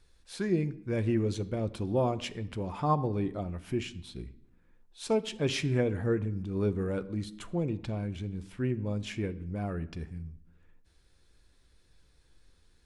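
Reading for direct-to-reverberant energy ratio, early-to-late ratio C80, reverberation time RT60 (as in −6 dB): 11.5 dB, 20.0 dB, 0.80 s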